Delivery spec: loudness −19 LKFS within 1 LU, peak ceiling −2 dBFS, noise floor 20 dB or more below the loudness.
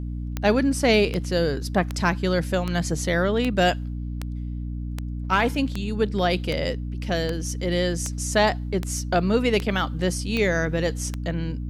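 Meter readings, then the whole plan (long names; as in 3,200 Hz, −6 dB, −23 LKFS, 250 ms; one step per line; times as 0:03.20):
number of clicks 15; mains hum 60 Hz; hum harmonics up to 300 Hz; level of the hum −27 dBFS; integrated loudness −24.0 LKFS; sample peak −7.5 dBFS; target loudness −19.0 LKFS
→ click removal
mains-hum notches 60/120/180/240/300 Hz
level +5 dB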